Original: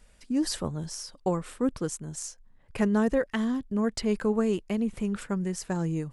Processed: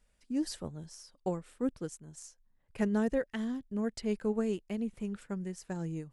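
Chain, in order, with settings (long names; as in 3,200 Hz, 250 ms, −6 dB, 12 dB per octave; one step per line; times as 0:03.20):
dynamic equaliser 1,100 Hz, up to −6 dB, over −51 dBFS, Q 2.9
expander for the loud parts 1.5 to 1, over −39 dBFS
level −4.5 dB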